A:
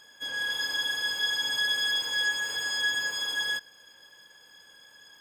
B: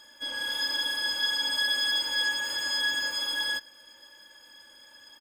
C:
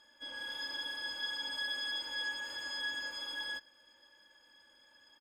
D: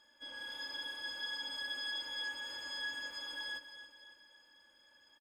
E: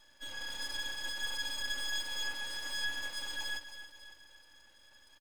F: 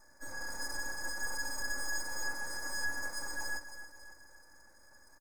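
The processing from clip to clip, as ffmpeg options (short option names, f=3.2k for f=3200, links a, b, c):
-af "aecho=1:1:3.4:0.79"
-af "highshelf=f=6.6k:g=-12,volume=-8.5dB"
-af "aecho=1:1:278|556|834|1112|1390:0.266|0.13|0.0639|0.0313|0.0153,volume=-3dB"
-af "aeval=exprs='max(val(0),0)':c=same,volume=8dB"
-af "asuperstop=centerf=3100:order=4:qfactor=0.76,volume=4.5dB"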